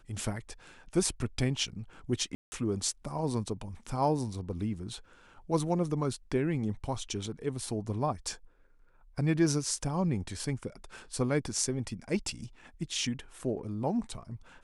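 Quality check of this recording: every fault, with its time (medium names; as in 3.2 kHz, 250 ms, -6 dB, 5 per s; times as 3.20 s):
2.35–2.52 s: dropout 170 ms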